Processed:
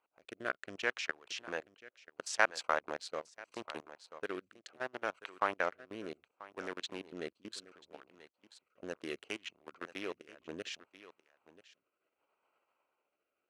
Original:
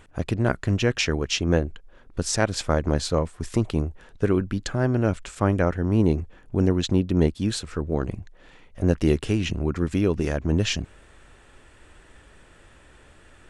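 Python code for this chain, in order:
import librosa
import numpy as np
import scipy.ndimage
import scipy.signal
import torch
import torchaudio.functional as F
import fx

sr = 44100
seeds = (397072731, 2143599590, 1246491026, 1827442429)

y = fx.wiener(x, sr, points=25)
y = fx.high_shelf(y, sr, hz=4600.0, db=-7.5)
y = fx.level_steps(y, sr, step_db=22)
y = scipy.signal.sosfilt(scipy.signal.butter(2, 1200.0, 'highpass', fs=sr, output='sos'), y)
y = y + 10.0 ** (-16.5 / 20.0) * np.pad(y, (int(986 * sr / 1000.0), 0))[:len(y)]
y = fx.rotary(y, sr, hz=0.7)
y = y * 10.0 ** (5.5 / 20.0)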